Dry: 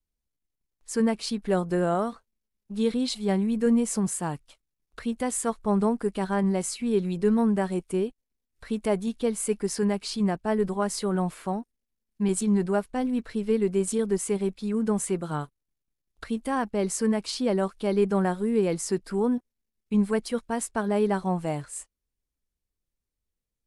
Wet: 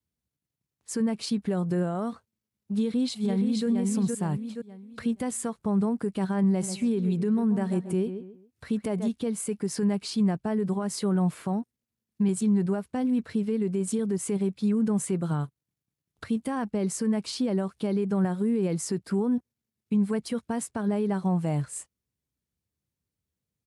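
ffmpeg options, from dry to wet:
-filter_complex "[0:a]asplit=2[a][b];[b]afade=t=in:st=2.77:d=0.01,afade=t=out:st=3.67:d=0.01,aecho=0:1:470|940|1410|1880:0.707946|0.176986|0.0442466|0.0110617[c];[a][c]amix=inputs=2:normalize=0,asplit=3[d][e][f];[d]afade=t=out:st=6.61:d=0.02[g];[e]asplit=2[h][i];[i]adelay=136,lowpass=f=2.3k:p=1,volume=-12.5dB,asplit=2[j][k];[k]adelay=136,lowpass=f=2.3k:p=1,volume=0.29,asplit=2[l][m];[m]adelay=136,lowpass=f=2.3k:p=1,volume=0.29[n];[h][j][l][n]amix=inputs=4:normalize=0,afade=t=in:st=6.61:d=0.02,afade=t=out:st=9.08:d=0.02[o];[f]afade=t=in:st=9.08:d=0.02[p];[g][o][p]amix=inputs=3:normalize=0,highpass=f=67:w=0.5412,highpass=f=67:w=1.3066,alimiter=limit=-23.5dB:level=0:latency=1:release=150,equalizer=f=130:t=o:w=1.8:g=10"

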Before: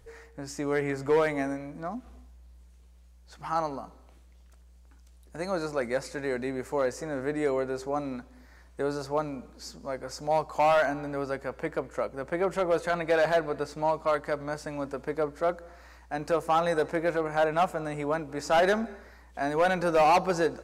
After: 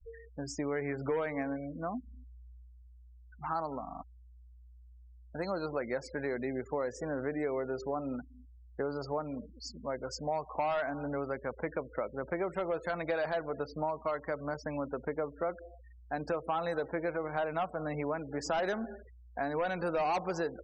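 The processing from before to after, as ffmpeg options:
-filter_complex "[0:a]asplit=6[a][b][c][d][e][f];[a]atrim=end=3.872[g];[b]atrim=start=3.828:end=3.872[h];[c]atrim=start=3.828:end=3.872[i];[d]atrim=start=3.828:end=3.872[j];[e]atrim=start=3.828:end=3.872[k];[f]atrim=start=4.028[l];[g][h]acrossfade=d=0.004:c1=hsin:c2=hsin[m];[m][i]acrossfade=d=0.004:c1=hsin:c2=hsin[n];[n][j]acrossfade=d=0.004:c1=hsin:c2=hsin[o];[o][k]acrossfade=d=0.004:c1=hsin:c2=hsin[p];[p][l]acrossfade=d=0.004:c1=hsin:c2=hsin,afftfilt=real='re*gte(hypot(re,im),0.0126)':imag='im*gte(hypot(re,im),0.0126)':win_size=1024:overlap=0.75,acompressor=threshold=-31dB:ratio=4"

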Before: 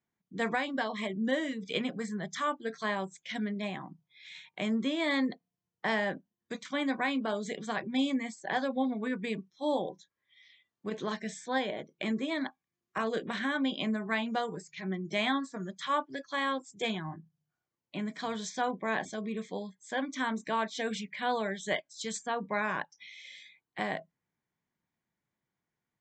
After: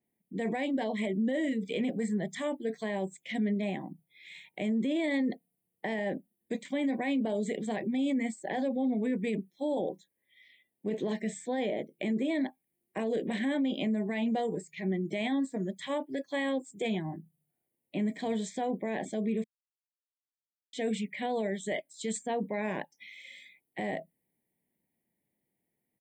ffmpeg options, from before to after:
-filter_complex "[0:a]asplit=3[a][b][c];[a]atrim=end=19.44,asetpts=PTS-STARTPTS,afade=t=out:st=19.436:d=0.004:c=hsin[d];[b]atrim=start=19.44:end=20.73,asetpts=PTS-STARTPTS,volume=0[e];[c]atrim=start=20.73,asetpts=PTS-STARTPTS,afade=t=in:d=0.004:c=hsin[f];[d][e][f]concat=n=3:v=0:a=1,firequalizer=gain_entry='entry(130,0);entry(220,7);entry(560,6);entry(840,0);entry(1300,-20);entry(1900,2);entry(5900,-13);entry(9400,11)':delay=0.05:min_phase=1,alimiter=limit=-23.5dB:level=0:latency=1:release=15,adynamicequalizer=threshold=0.00178:dfrequency=4600:dqfactor=0.7:tfrequency=4600:tqfactor=0.7:attack=5:release=100:ratio=0.375:range=2:mode=boostabove:tftype=highshelf"

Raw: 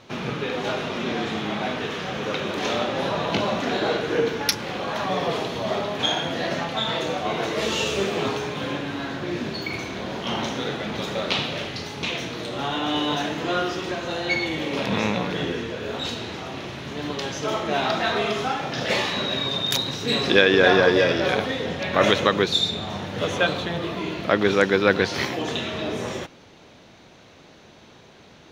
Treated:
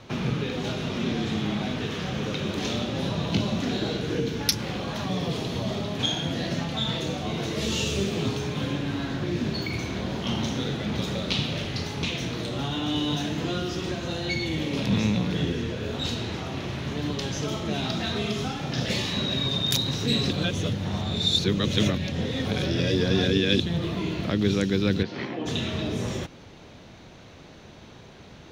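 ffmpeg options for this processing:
-filter_complex "[0:a]asplit=3[a][b][c];[a]afade=t=out:st=25.02:d=0.02[d];[b]highpass=230,lowpass=2.1k,afade=t=in:st=25.02:d=0.02,afade=t=out:st=25.45:d=0.02[e];[c]afade=t=in:st=25.45:d=0.02[f];[d][e][f]amix=inputs=3:normalize=0,asplit=3[g][h][i];[g]atrim=end=20.312[j];[h]atrim=start=20.308:end=23.602,asetpts=PTS-STARTPTS,areverse[k];[i]atrim=start=23.598[l];[j][k]acrossfade=d=0.004:c1=hsin:c2=hsin[m];[m][l]acrossfade=d=0.004:c1=hsin:c2=hsin,lowshelf=f=150:g=10.5,acrossover=split=320|3000[n][o][p];[o]acompressor=threshold=-34dB:ratio=10[q];[n][q][p]amix=inputs=3:normalize=0"

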